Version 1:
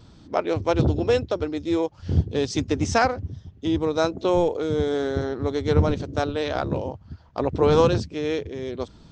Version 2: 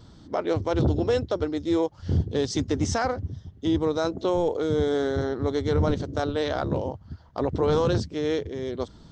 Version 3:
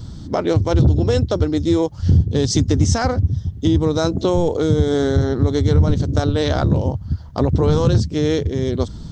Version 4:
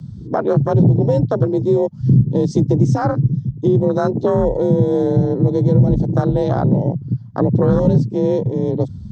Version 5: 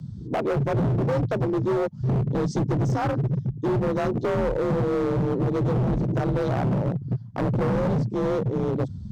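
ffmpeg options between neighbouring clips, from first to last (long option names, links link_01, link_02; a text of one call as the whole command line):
ffmpeg -i in.wav -af "equalizer=frequency=2500:width_type=o:width=0.2:gain=-9.5,alimiter=limit=-14.5dB:level=0:latency=1:release=13" out.wav
ffmpeg -i in.wav -af "bass=frequency=250:gain=12,treble=frequency=4000:gain=8,acompressor=threshold=-20dB:ratio=2.5,volume=6.5dB" out.wav
ffmpeg -i in.wav -af "afwtdn=0.0891,afreqshift=41,volume=1.5dB" out.wav
ffmpeg -i in.wav -af "asoftclip=type=hard:threshold=-16.5dB,volume=-4dB" out.wav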